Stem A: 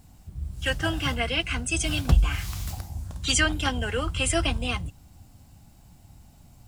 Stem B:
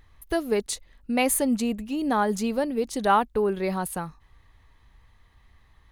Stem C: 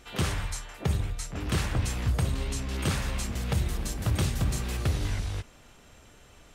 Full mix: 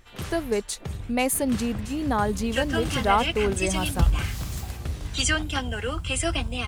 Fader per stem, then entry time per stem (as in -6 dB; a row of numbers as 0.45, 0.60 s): -1.5, -1.0, -6.5 dB; 1.90, 0.00, 0.00 s